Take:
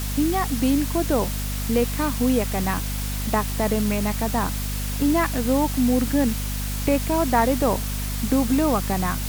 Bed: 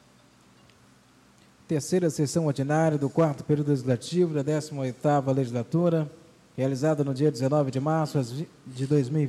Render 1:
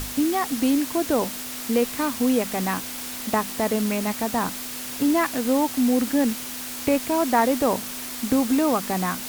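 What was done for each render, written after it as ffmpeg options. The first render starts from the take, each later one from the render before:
ffmpeg -i in.wav -af "bandreject=frequency=50:width_type=h:width=6,bandreject=frequency=100:width_type=h:width=6,bandreject=frequency=150:width_type=h:width=6,bandreject=frequency=200:width_type=h:width=6" out.wav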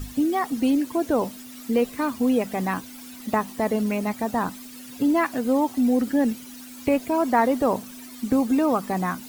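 ffmpeg -i in.wav -af "afftdn=noise_reduction=14:noise_floor=-34" out.wav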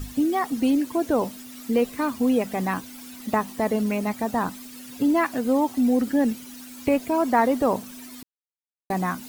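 ffmpeg -i in.wav -filter_complex "[0:a]asplit=3[link_01][link_02][link_03];[link_01]atrim=end=8.23,asetpts=PTS-STARTPTS,afade=type=out:start_time=8.226:duration=0.004:curve=hsin[link_04];[link_02]atrim=start=8.23:end=8.9,asetpts=PTS-STARTPTS,volume=0[link_05];[link_03]atrim=start=8.9,asetpts=PTS-STARTPTS,afade=type=in:duration=0.004:curve=hsin[link_06];[link_04][link_05][link_06]concat=n=3:v=0:a=1" out.wav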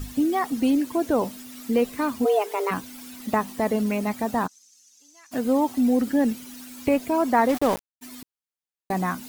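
ffmpeg -i in.wav -filter_complex "[0:a]asplit=3[link_01][link_02][link_03];[link_01]afade=type=out:start_time=2.24:duration=0.02[link_04];[link_02]afreqshift=210,afade=type=in:start_time=2.24:duration=0.02,afade=type=out:start_time=2.7:duration=0.02[link_05];[link_03]afade=type=in:start_time=2.7:duration=0.02[link_06];[link_04][link_05][link_06]amix=inputs=3:normalize=0,asplit=3[link_07][link_08][link_09];[link_07]afade=type=out:start_time=4.46:duration=0.02[link_10];[link_08]bandpass=frequency=6200:width_type=q:width=6.5,afade=type=in:start_time=4.46:duration=0.02,afade=type=out:start_time=5.31:duration=0.02[link_11];[link_09]afade=type=in:start_time=5.31:duration=0.02[link_12];[link_10][link_11][link_12]amix=inputs=3:normalize=0,asplit=3[link_13][link_14][link_15];[link_13]afade=type=out:start_time=7.48:duration=0.02[link_16];[link_14]aeval=exprs='val(0)*gte(abs(val(0)),0.0473)':channel_layout=same,afade=type=in:start_time=7.48:duration=0.02,afade=type=out:start_time=8.01:duration=0.02[link_17];[link_15]afade=type=in:start_time=8.01:duration=0.02[link_18];[link_16][link_17][link_18]amix=inputs=3:normalize=0" out.wav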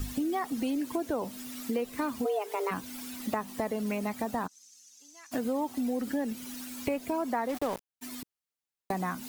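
ffmpeg -i in.wav -filter_complex "[0:a]acrossover=split=340[link_01][link_02];[link_01]alimiter=level_in=1dB:limit=-24dB:level=0:latency=1,volume=-1dB[link_03];[link_03][link_02]amix=inputs=2:normalize=0,acompressor=threshold=-29dB:ratio=4" out.wav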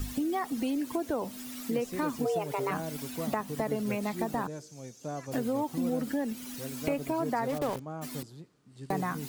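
ffmpeg -i in.wav -i bed.wav -filter_complex "[1:a]volume=-15dB[link_01];[0:a][link_01]amix=inputs=2:normalize=0" out.wav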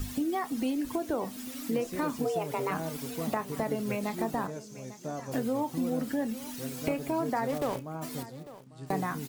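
ffmpeg -i in.wav -filter_complex "[0:a]asplit=2[link_01][link_02];[link_02]adelay=31,volume=-13.5dB[link_03];[link_01][link_03]amix=inputs=2:normalize=0,aecho=1:1:848:0.15" out.wav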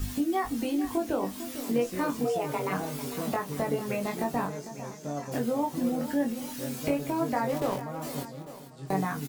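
ffmpeg -i in.wav -filter_complex "[0:a]asplit=2[link_01][link_02];[link_02]adelay=21,volume=-3dB[link_03];[link_01][link_03]amix=inputs=2:normalize=0,aecho=1:1:450:0.224" out.wav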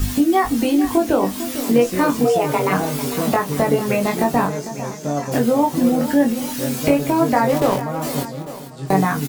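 ffmpeg -i in.wav -af "volume=12dB" out.wav

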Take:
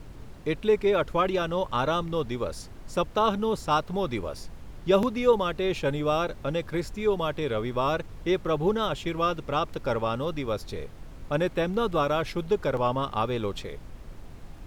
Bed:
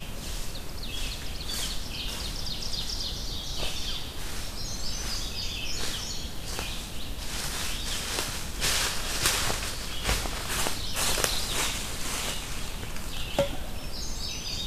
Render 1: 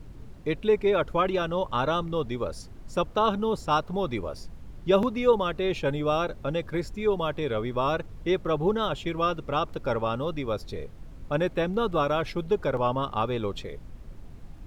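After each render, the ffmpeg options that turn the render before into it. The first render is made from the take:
ffmpeg -i in.wav -af "afftdn=noise_reduction=6:noise_floor=-44" out.wav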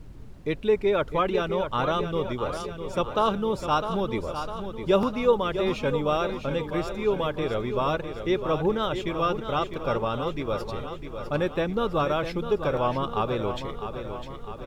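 ffmpeg -i in.wav -af "aecho=1:1:654|1308|1962|2616|3270|3924|4578:0.355|0.206|0.119|0.0692|0.0402|0.0233|0.0135" out.wav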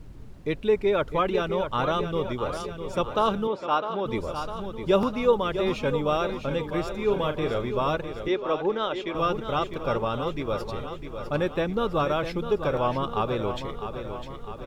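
ffmpeg -i in.wav -filter_complex "[0:a]asettb=1/sr,asplit=3[link_01][link_02][link_03];[link_01]atrim=end=3.474[link_04];[link_02]atrim=start=3.47:end=4.06,asetpts=PTS-STARTPTS,afade=type=in:duration=0.004:curve=qsin,afade=type=out:start_time=0.586:duration=0.004:curve=qsin,highpass=290,lowpass=3400[link_05];[link_03]atrim=start=4.056[link_06];[link_04][link_05]acrossfade=duration=0.004:curve1=hsin:curve2=qsin[link_07];[link_07][link_06]acrossfade=duration=0.004:curve1=qsin:curve2=hsin,asettb=1/sr,asplit=3[link_08][link_09][link_10];[link_08]atrim=end=7.044[link_11];[link_09]atrim=start=7.04:end=7.69,asetpts=PTS-STARTPTS,afade=type=in:duration=0.004:curve=qsin,afade=type=out:start_time=0.646:duration=0.004:curve=qsin,asplit=2[link_12][link_13];[link_13]adelay=39,volume=-9dB[link_14];[link_12][link_14]amix=inputs=2:normalize=0,atrim=end_sample=28665[link_15];[link_10]atrim=start=7.686[link_16];[link_11][link_15]acrossfade=duration=0.004:curve1=hsin:curve2=qsin[link_17];[link_17][link_16]acrossfade=duration=0.004:curve1=qsin:curve2=hsin,asettb=1/sr,asplit=3[link_18][link_19][link_20];[link_18]atrim=end=8.284[link_21];[link_19]atrim=start=8.28:end=9.15,asetpts=PTS-STARTPTS,afade=type=in:duration=0.004:curve=qsin,afade=type=out:start_time=0.866:duration=0.004:curve=qsin,acrossover=split=230 6400:gain=0.112 1 0.126[link_22][link_23][link_24];[link_22][link_23][link_24]amix=inputs=3:normalize=0[link_25];[link_20]atrim=start=9.146[link_26];[link_21][link_25]acrossfade=duration=0.004:curve1=hsin:curve2=qsin[link_27];[link_27][link_26]acrossfade=duration=0.004:curve1=qsin:curve2=hsin" out.wav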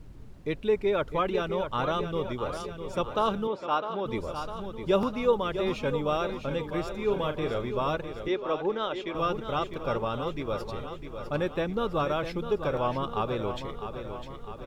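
ffmpeg -i in.wav -af "volume=-3dB" out.wav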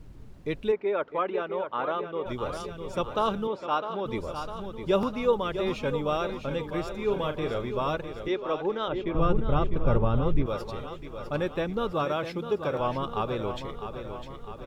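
ffmpeg -i in.wav -filter_complex "[0:a]asplit=3[link_01][link_02][link_03];[link_01]afade=type=out:start_time=0.71:duration=0.02[link_04];[link_02]highpass=320,lowpass=2200,afade=type=in:start_time=0.71:duration=0.02,afade=type=out:start_time=2.25:duration=0.02[link_05];[link_03]afade=type=in:start_time=2.25:duration=0.02[link_06];[link_04][link_05][link_06]amix=inputs=3:normalize=0,asettb=1/sr,asplit=3[link_07][link_08][link_09];[link_07]atrim=end=8.884[link_10];[link_08]atrim=start=8.88:end=10.46,asetpts=PTS-STARTPTS,afade=type=in:duration=0.004:curve=qsin,afade=type=out:start_time=1.576:duration=0.004:curve=qsin,aemphasis=mode=reproduction:type=riaa[link_11];[link_09]atrim=start=10.456[link_12];[link_10][link_11]acrossfade=duration=0.004:curve1=hsin:curve2=qsin[link_13];[link_13][link_12]acrossfade=duration=0.004:curve1=qsin:curve2=hsin,asettb=1/sr,asplit=3[link_14][link_15][link_16];[link_14]atrim=end=11.924[link_17];[link_15]atrim=start=11.92:end=12.8,asetpts=PTS-STARTPTS,afade=type=in:duration=0.004:curve=qsin,afade=type=out:start_time=0.876:duration=0.004:curve=qsin,highpass=110[link_18];[link_16]atrim=start=12.796[link_19];[link_17][link_18]acrossfade=duration=0.004:curve1=hsin:curve2=qsin[link_20];[link_20][link_19]acrossfade=duration=0.004:curve1=qsin:curve2=hsin" out.wav

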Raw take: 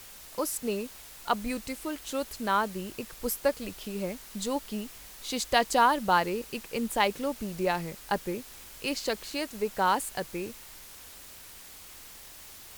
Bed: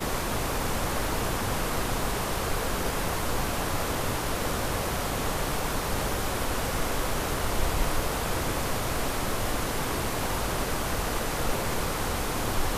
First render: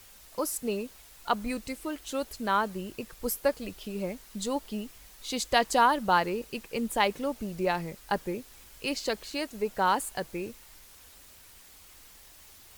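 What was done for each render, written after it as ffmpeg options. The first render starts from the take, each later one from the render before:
ffmpeg -i in.wav -af "afftdn=noise_reduction=6:noise_floor=-48" out.wav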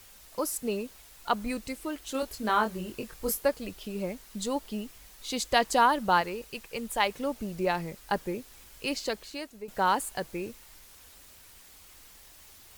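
ffmpeg -i in.wav -filter_complex "[0:a]asettb=1/sr,asplit=3[link_01][link_02][link_03];[link_01]atrim=end=2.124[link_04];[link_02]atrim=start=2.12:end=3.43,asetpts=PTS-STARTPTS,afade=type=in:duration=0.004:curve=qsin,afade=type=out:start_time=1.306:duration=0.004:curve=qsin,asplit=2[link_05][link_06];[link_06]adelay=23,volume=-4.5dB[link_07];[link_05][link_07]amix=inputs=2:normalize=0,atrim=end_sample=57771[link_08];[link_03]atrim=start=3.426[link_09];[link_04][link_08]acrossfade=duration=0.004:curve1=hsin:curve2=qsin[link_10];[link_10][link_09]acrossfade=duration=0.004:curve1=qsin:curve2=hsin,asettb=1/sr,asplit=3[link_11][link_12][link_13];[link_11]atrim=end=6.214[link_14];[link_12]atrim=start=6.21:end=7.2,asetpts=PTS-STARTPTS,afade=type=in:duration=0.004:curve=qsin,afade=type=out:start_time=0.986:duration=0.004:curve=qsin,equalizer=frequency=260:width_type=o:width=1.7:gain=-7[link_15];[link_13]atrim=start=7.196[link_16];[link_14][link_15]acrossfade=duration=0.004:curve1=hsin:curve2=qsin[link_17];[link_17][link_16]acrossfade=duration=0.004:curve1=qsin:curve2=hsin,asplit=2[link_18][link_19];[link_18]atrim=end=9.68,asetpts=PTS-STARTPTS,afade=type=out:start_time=8.95:duration=0.73:silence=0.251189[link_20];[link_19]atrim=start=9.68,asetpts=PTS-STARTPTS,afade=type=in:duration=0.004:curve=hsin:silence=0.251189[link_21];[link_20][link_21]concat=n=2:v=0:a=1" out.wav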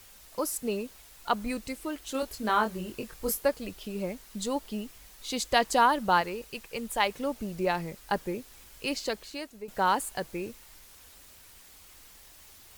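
ffmpeg -i in.wav -af anull out.wav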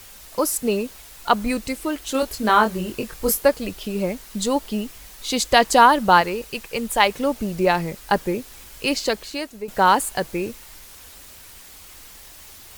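ffmpeg -i in.wav -af "volume=9.5dB,alimiter=limit=-1dB:level=0:latency=1" out.wav

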